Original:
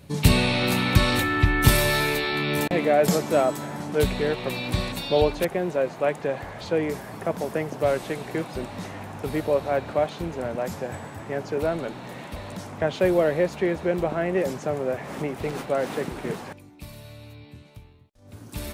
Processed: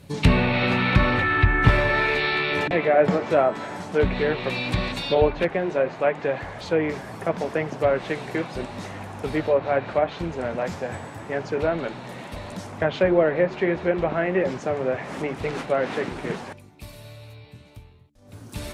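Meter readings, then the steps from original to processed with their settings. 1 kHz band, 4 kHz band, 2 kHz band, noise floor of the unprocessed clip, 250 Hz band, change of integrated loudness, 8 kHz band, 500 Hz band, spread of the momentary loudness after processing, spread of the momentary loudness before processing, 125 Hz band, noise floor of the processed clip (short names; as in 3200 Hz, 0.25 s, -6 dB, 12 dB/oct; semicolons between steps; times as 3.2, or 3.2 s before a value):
+2.5 dB, -2.5 dB, +3.5 dB, -47 dBFS, +0.5 dB, +1.5 dB, under -10 dB, +1.5 dB, 14 LU, 16 LU, +0.5 dB, -47 dBFS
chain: treble ducked by the level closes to 2000 Hz, closed at -17.5 dBFS; de-hum 73.01 Hz, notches 5; dynamic EQ 2000 Hz, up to +4 dB, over -40 dBFS, Q 0.87; flange 0.78 Hz, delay 0.5 ms, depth 9.5 ms, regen -70%; gain +5.5 dB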